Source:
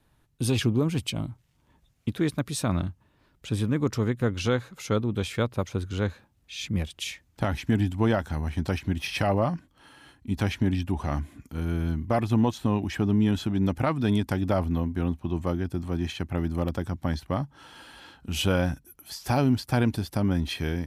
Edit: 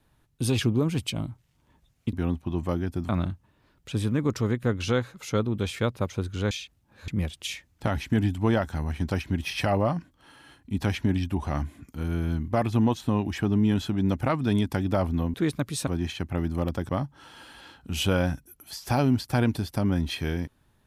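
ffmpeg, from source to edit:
-filter_complex "[0:a]asplit=8[s0][s1][s2][s3][s4][s5][s6][s7];[s0]atrim=end=2.132[s8];[s1]atrim=start=14.908:end=15.872[s9];[s2]atrim=start=2.658:end=6.082[s10];[s3]atrim=start=6.078:end=6.652,asetpts=PTS-STARTPTS,areverse[s11];[s4]atrim=start=6.648:end=14.912[s12];[s5]atrim=start=2.128:end=2.662[s13];[s6]atrim=start=15.868:end=16.892[s14];[s7]atrim=start=17.278[s15];[s8][s9]acrossfade=d=0.004:c1=hsin:c2=hsin[s16];[s16][s10]acrossfade=d=0.004:c1=hsin:c2=hsin[s17];[s17][s11]acrossfade=d=0.004:c1=hsin:c2=hsin[s18];[s18][s12]acrossfade=d=0.004:c1=hsin:c2=hsin[s19];[s19][s13]acrossfade=d=0.004:c1=hsin:c2=hsin[s20];[s20][s14]acrossfade=d=0.004:c1=hsin:c2=hsin[s21];[s21][s15]acrossfade=d=0.004:c1=hsin:c2=hsin"

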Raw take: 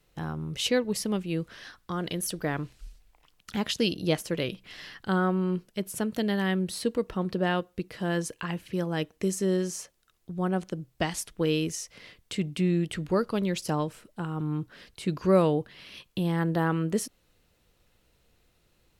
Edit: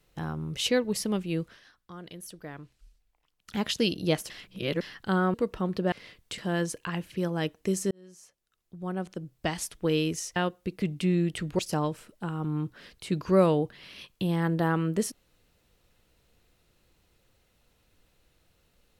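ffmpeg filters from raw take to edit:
-filter_complex "[0:a]asplit=12[s0][s1][s2][s3][s4][s5][s6][s7][s8][s9][s10][s11];[s0]atrim=end=1.61,asetpts=PTS-STARTPTS,afade=t=out:st=1.4:d=0.21:silence=0.251189[s12];[s1]atrim=start=1.61:end=3.39,asetpts=PTS-STARTPTS,volume=0.251[s13];[s2]atrim=start=3.39:end=4.302,asetpts=PTS-STARTPTS,afade=t=in:d=0.21:silence=0.251189[s14];[s3]atrim=start=4.298:end=4.812,asetpts=PTS-STARTPTS,areverse[s15];[s4]atrim=start=4.808:end=5.342[s16];[s5]atrim=start=6.898:end=7.482[s17];[s6]atrim=start=11.918:end=12.382[s18];[s7]atrim=start=7.938:end=9.47,asetpts=PTS-STARTPTS,afade=t=out:st=1.528:d=0.004:c=hsin[s19];[s8]atrim=start=9.47:end=11.922,asetpts=PTS-STARTPTS,afade=t=in:d=1.86[s20];[s9]atrim=start=7.478:end=7.942[s21];[s10]atrim=start=12.378:end=13.152[s22];[s11]atrim=start=13.548[s23];[s12][s13][s14]concat=n=3:v=0:a=1[s24];[s24][s15]acrossfade=d=0.004:c1=hsin:c2=hsin[s25];[s25][s16]acrossfade=d=0.004:c1=hsin:c2=hsin[s26];[s26][s17]acrossfade=d=0.004:c1=hsin:c2=hsin[s27];[s27][s18]acrossfade=d=0.004:c1=hsin:c2=hsin[s28];[s19][s20]concat=n=2:v=0:a=1[s29];[s28][s29]acrossfade=d=0.004:c1=hsin:c2=hsin[s30];[s30][s21]acrossfade=d=0.004:c1=hsin:c2=hsin[s31];[s31][s22]acrossfade=d=0.004:c1=hsin:c2=hsin[s32];[s32][s23]acrossfade=d=0.004:c1=hsin:c2=hsin"

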